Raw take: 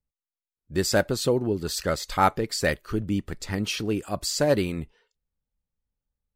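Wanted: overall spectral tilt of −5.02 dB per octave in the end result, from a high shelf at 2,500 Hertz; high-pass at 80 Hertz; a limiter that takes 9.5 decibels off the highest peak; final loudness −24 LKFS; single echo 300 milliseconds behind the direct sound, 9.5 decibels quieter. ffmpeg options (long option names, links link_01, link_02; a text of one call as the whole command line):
ffmpeg -i in.wav -af "highpass=80,highshelf=frequency=2500:gain=-6,alimiter=limit=-16.5dB:level=0:latency=1,aecho=1:1:300:0.335,volume=5dB" out.wav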